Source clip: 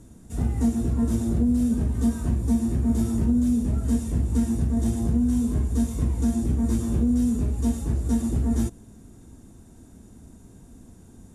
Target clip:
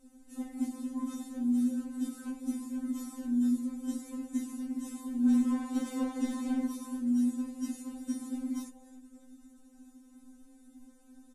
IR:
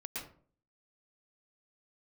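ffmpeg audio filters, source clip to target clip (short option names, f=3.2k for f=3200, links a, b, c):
-filter_complex "[0:a]asplit=3[a][b][c];[a]afade=t=out:st=5.25:d=0.02[d];[b]asplit=2[e][f];[f]highpass=f=720:p=1,volume=22dB,asoftclip=type=tanh:threshold=-11.5dB[g];[e][g]amix=inputs=2:normalize=0,lowpass=f=1.9k:p=1,volume=-6dB,afade=t=in:st=5.25:d=0.02,afade=t=out:st=6.66:d=0.02[h];[c]afade=t=in:st=6.66:d=0.02[i];[d][h][i]amix=inputs=3:normalize=0,asplit=3[j][k][l];[k]adelay=281,afreqshift=94,volume=-21dB[m];[l]adelay=562,afreqshift=188,volume=-30.9dB[n];[j][m][n]amix=inputs=3:normalize=0,afftfilt=real='re*3.46*eq(mod(b,12),0)':imag='im*3.46*eq(mod(b,12),0)':win_size=2048:overlap=0.75,volume=-5.5dB"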